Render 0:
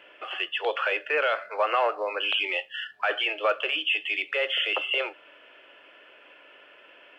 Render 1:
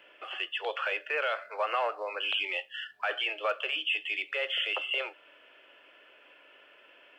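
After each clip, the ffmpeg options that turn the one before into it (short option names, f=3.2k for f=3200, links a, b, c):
-filter_complex "[0:a]highshelf=f=5.9k:g=7,acrossover=split=370|1900[a][b][c];[a]acompressor=threshold=-51dB:ratio=6[d];[d][b][c]amix=inputs=3:normalize=0,volume=-5.5dB"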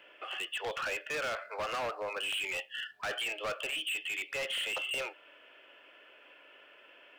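-af "volume=32dB,asoftclip=hard,volume=-32dB"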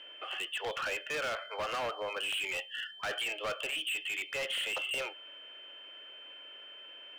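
-af "aeval=exprs='val(0)+0.00398*sin(2*PI*3100*n/s)':c=same"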